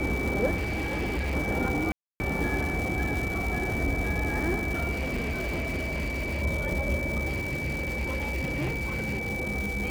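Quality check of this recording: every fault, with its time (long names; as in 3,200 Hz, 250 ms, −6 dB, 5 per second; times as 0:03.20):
surface crackle 500 per second −31 dBFS
whistle 2,300 Hz −32 dBFS
0:00.55–0:01.36: clipping −26 dBFS
0:01.92–0:02.20: drop-out 280 ms
0:04.91–0:06.43: clipping −26.5 dBFS
0:07.27–0:09.30: clipping −25.5 dBFS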